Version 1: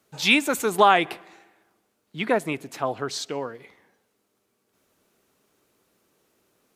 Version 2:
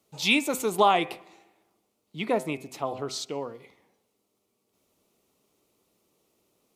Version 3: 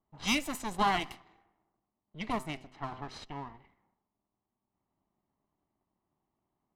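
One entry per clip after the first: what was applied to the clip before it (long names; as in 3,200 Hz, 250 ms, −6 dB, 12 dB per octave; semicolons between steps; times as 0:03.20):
parametric band 1,600 Hz −14 dB 0.41 octaves; hum removal 128.7 Hz, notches 20; level −2.5 dB
lower of the sound and its delayed copy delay 1 ms; low-pass that shuts in the quiet parts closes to 1,200 Hz, open at −24.5 dBFS; level −6.5 dB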